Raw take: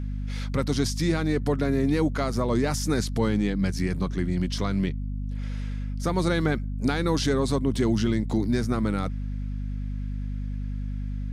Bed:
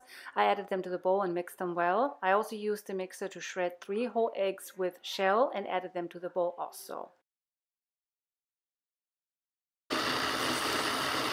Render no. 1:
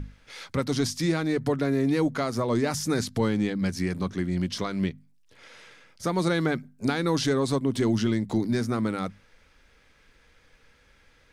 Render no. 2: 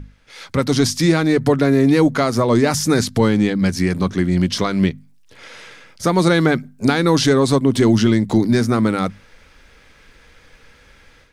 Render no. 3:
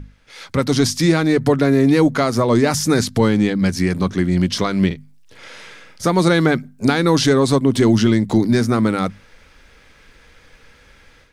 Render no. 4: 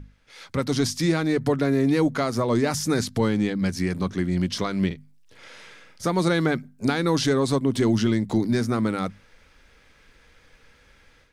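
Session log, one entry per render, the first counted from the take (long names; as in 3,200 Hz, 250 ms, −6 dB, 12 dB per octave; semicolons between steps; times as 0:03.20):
mains-hum notches 50/100/150/200/250 Hz
automatic gain control gain up to 11 dB
0:04.86–0:06.07: double-tracking delay 47 ms −7.5 dB
level −7 dB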